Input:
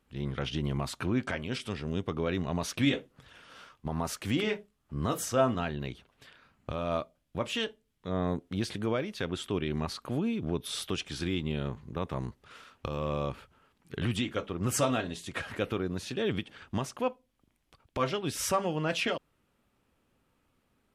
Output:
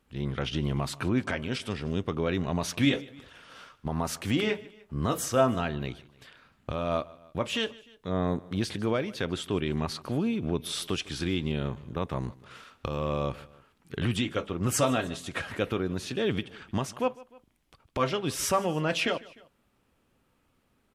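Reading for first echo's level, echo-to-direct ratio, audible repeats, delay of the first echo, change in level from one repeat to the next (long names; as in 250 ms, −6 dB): −21.5 dB, −20.5 dB, 2, 151 ms, −5.0 dB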